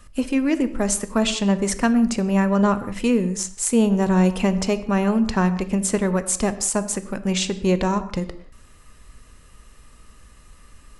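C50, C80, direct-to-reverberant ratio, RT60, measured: 13.5 dB, 15.0 dB, 11.0 dB, not exponential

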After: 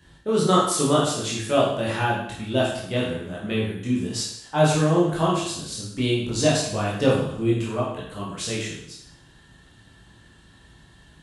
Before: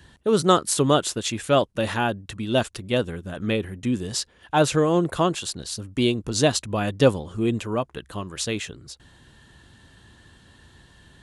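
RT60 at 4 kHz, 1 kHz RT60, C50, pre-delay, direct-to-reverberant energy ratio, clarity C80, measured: 0.70 s, 0.75 s, 2.0 dB, 14 ms, -6.0 dB, 5.0 dB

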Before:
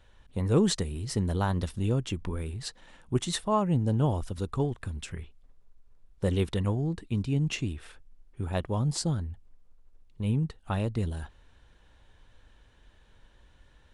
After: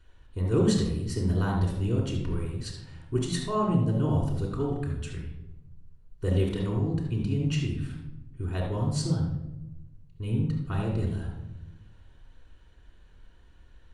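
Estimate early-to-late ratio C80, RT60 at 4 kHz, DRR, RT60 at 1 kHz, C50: 6.0 dB, 0.55 s, -3.0 dB, 0.80 s, 3.0 dB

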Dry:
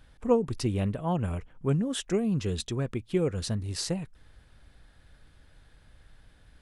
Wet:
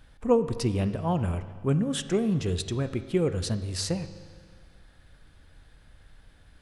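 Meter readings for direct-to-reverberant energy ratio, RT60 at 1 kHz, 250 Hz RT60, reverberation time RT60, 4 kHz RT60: 10.5 dB, 1.8 s, 1.8 s, 1.8 s, 1.8 s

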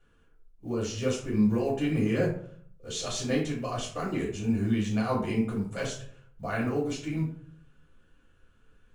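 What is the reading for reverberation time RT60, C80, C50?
0.55 s, 10.0 dB, 5.5 dB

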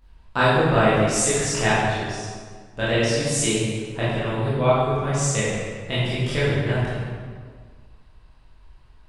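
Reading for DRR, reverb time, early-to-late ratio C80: -10.5 dB, 1.7 s, 0.0 dB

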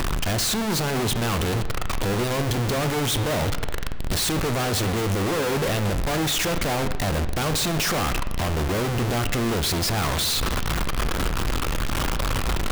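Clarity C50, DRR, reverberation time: 11.5 dB, 9.5 dB, 1.3 s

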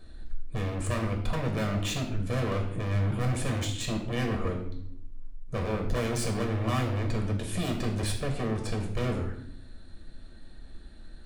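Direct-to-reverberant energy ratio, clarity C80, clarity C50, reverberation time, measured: 1.5 dB, 10.0 dB, 7.5 dB, 0.70 s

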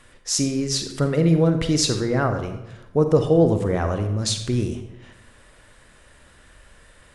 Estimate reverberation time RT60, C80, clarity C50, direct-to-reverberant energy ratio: 0.90 s, 10.0 dB, 7.5 dB, 6.5 dB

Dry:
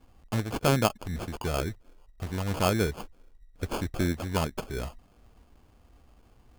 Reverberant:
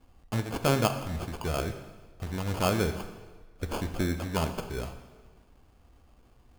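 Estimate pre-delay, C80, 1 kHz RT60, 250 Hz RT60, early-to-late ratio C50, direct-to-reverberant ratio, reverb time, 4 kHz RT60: 19 ms, 11.0 dB, 1.4 s, 1.3 s, 9.5 dB, 8.0 dB, 1.4 s, 1.2 s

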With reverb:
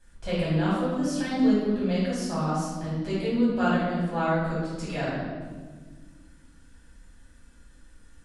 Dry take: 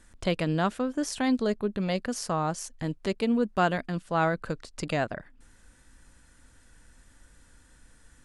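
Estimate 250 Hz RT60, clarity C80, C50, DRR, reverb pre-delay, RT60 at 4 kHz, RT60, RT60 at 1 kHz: 2.6 s, 2.0 dB, -1.0 dB, -10.5 dB, 3 ms, 1.2 s, 1.6 s, 1.3 s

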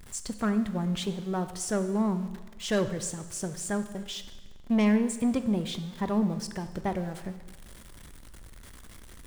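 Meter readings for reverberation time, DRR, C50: 1.3 s, 10.0 dB, 12.0 dB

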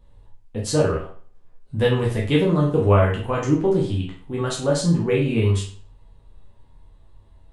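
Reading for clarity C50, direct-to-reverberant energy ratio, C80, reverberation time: 5.5 dB, -4.0 dB, 10.5 dB, 0.45 s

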